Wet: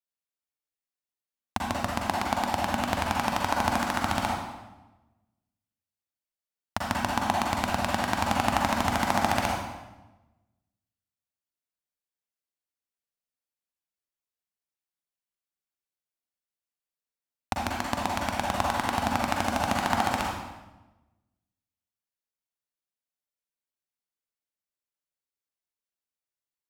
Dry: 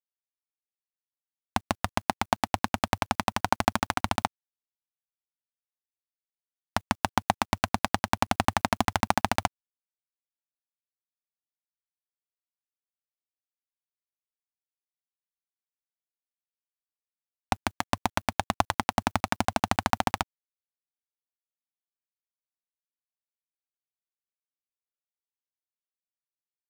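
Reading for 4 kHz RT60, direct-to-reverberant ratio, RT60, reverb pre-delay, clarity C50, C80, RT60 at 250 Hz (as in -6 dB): 0.85 s, -2.5 dB, 1.1 s, 38 ms, -0.5 dB, 2.5 dB, 1.3 s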